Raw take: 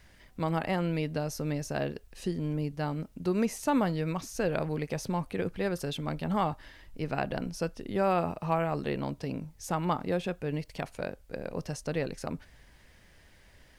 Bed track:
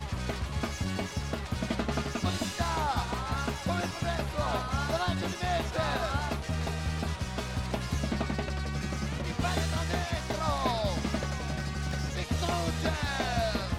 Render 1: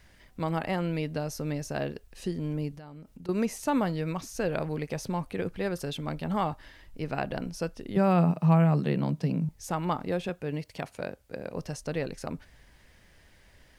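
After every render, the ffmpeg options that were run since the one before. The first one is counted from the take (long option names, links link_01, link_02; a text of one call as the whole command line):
ffmpeg -i in.wav -filter_complex "[0:a]asettb=1/sr,asplit=3[link_01][link_02][link_03];[link_01]atrim=end=2.764[link_04];[link_02]atrim=start=2.76:end=3.29,asetpts=PTS-STARTPTS,afade=type=in:duration=0.004:curve=qsin,afade=type=out:start_time=0.526:duration=0.004:curve=qsin,acompressor=threshold=-41dB:ratio=20:attack=3.2:release=140:knee=1:detection=peak[link_05];[link_03]atrim=start=3.286[link_06];[link_04][link_05]acrossfade=duration=0.004:curve1=hsin:curve2=qsin[link_07];[link_07][link_06]acrossfade=duration=0.004:curve1=qsin:curve2=hsin,asettb=1/sr,asplit=3[link_08][link_09][link_10];[link_08]atrim=end=7.964[link_11];[link_09]atrim=start=7.96:end=9.49,asetpts=PTS-STARTPTS,afade=type=in:duration=0.004:curve=qsin,afade=type=out:start_time=1.526:duration=0.004:curve=qsin,highpass=frequency=160:width_type=q:width=4.9[link_12];[link_10]atrim=start=9.486[link_13];[link_11][link_12]acrossfade=duration=0.004:curve1=hsin:curve2=qsin[link_14];[link_14][link_13]acrossfade=duration=0.004:curve1=qsin:curve2=hsin,asettb=1/sr,asplit=3[link_15][link_16][link_17];[link_15]atrim=end=10.294[link_18];[link_16]atrim=start=10.29:end=11.54,asetpts=PTS-STARTPTS,afade=type=in:duration=0.004:curve=qsin,afade=type=out:start_time=1.246:duration=0.004:curve=qsin,highpass=75[link_19];[link_17]atrim=start=11.536[link_20];[link_18][link_19]acrossfade=duration=0.004:curve1=hsin:curve2=qsin[link_21];[link_21][link_20]acrossfade=duration=0.004:curve1=qsin:curve2=hsin" out.wav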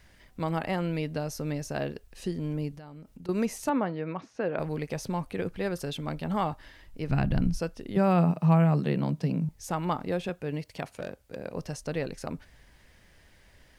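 ffmpeg -i in.wav -filter_complex "[0:a]asettb=1/sr,asplit=3[link_01][link_02][link_03];[link_01]atrim=end=3.694[link_04];[link_02]atrim=start=3.69:end=4.59,asetpts=PTS-STARTPTS,afade=type=in:duration=0.004:curve=qsin,afade=type=out:start_time=0.896:duration=0.004:curve=qsin,highpass=200,lowpass=2200[link_05];[link_03]atrim=start=4.586[link_06];[link_04][link_05]acrossfade=duration=0.004:curve1=hsin:curve2=qsin[link_07];[link_07][link_06]acrossfade=duration=0.004:curve1=qsin:curve2=hsin,asplit=3[link_08][link_09][link_10];[link_08]afade=type=out:start_time=7.08:duration=0.02[link_11];[link_09]asubboost=boost=7.5:cutoff=180,afade=type=in:start_time=7.08:duration=0.02,afade=type=out:start_time=7.59:duration=0.02[link_12];[link_10]afade=type=in:start_time=7.59:duration=0.02[link_13];[link_11][link_12][link_13]amix=inputs=3:normalize=0,asettb=1/sr,asplit=3[link_14][link_15][link_16];[link_14]atrim=end=10.954[link_17];[link_15]atrim=start=10.95:end=11.36,asetpts=PTS-STARTPTS,afade=type=in:duration=0.004:curve=qsin,afade=type=out:start_time=0.406:duration=0.004:curve=qsin,asoftclip=type=hard:threshold=-29dB[link_18];[link_16]atrim=start=11.356[link_19];[link_17][link_18]acrossfade=duration=0.004:curve1=hsin:curve2=qsin[link_20];[link_20][link_19]acrossfade=duration=0.004:curve1=qsin:curve2=hsin" out.wav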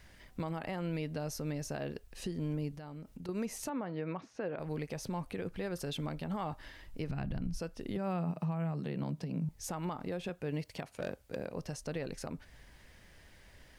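ffmpeg -i in.wav -af "acompressor=threshold=-27dB:ratio=6,alimiter=level_in=3.5dB:limit=-24dB:level=0:latency=1:release=280,volume=-3.5dB" out.wav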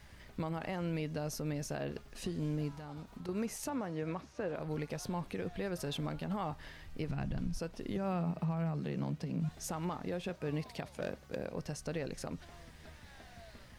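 ffmpeg -i in.wav -i bed.wav -filter_complex "[1:a]volume=-26dB[link_01];[0:a][link_01]amix=inputs=2:normalize=0" out.wav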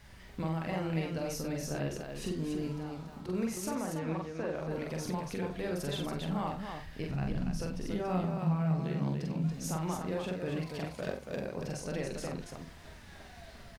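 ffmpeg -i in.wav -filter_complex "[0:a]asplit=2[link_01][link_02];[link_02]adelay=49,volume=-9dB[link_03];[link_01][link_03]amix=inputs=2:normalize=0,asplit=2[link_04][link_05];[link_05]aecho=0:1:43.73|282.8:0.708|0.562[link_06];[link_04][link_06]amix=inputs=2:normalize=0" out.wav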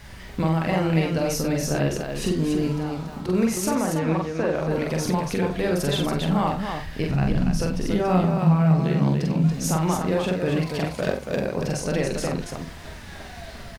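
ffmpeg -i in.wav -af "volume=12dB" out.wav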